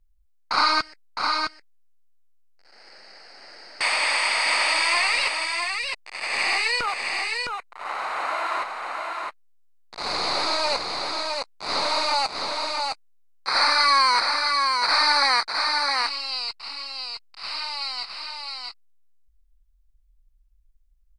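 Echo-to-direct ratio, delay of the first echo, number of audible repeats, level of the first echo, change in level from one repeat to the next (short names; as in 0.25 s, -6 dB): -4.0 dB, 0.661 s, 1, -4.0 dB, no steady repeat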